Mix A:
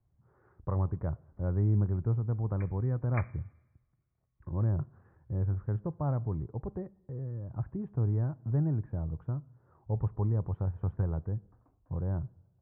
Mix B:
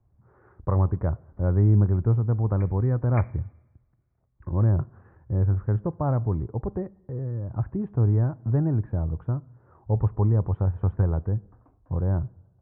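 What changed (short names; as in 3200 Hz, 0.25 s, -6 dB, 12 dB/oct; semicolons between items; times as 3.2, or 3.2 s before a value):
speech +8.5 dB; master: add bell 150 Hz -5 dB 0.31 oct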